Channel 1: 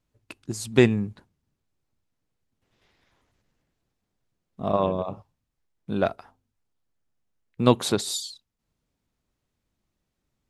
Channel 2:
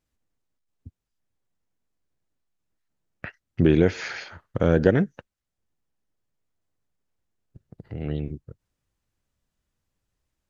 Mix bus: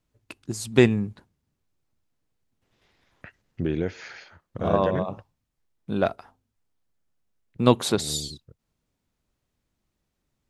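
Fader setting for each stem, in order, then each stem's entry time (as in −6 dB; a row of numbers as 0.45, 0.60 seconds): +0.5, −8.5 decibels; 0.00, 0.00 seconds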